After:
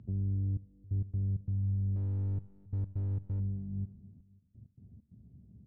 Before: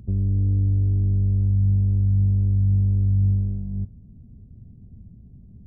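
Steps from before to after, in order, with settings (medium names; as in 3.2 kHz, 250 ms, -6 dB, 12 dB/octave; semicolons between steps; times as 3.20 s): high-pass 67 Hz 24 dB/octave; peak limiter -17.5 dBFS, peak gain reduction 4.5 dB; trance gate "xxxxx...x.xx.xxx" 132 bpm -24 dB; 1.96–3.40 s: hard clipper -21 dBFS, distortion -20 dB; distance through air 140 m; feedback delay 270 ms, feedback 36%, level -19 dB; Schroeder reverb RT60 0.62 s, combs from 27 ms, DRR 17 dB; trim -8.5 dB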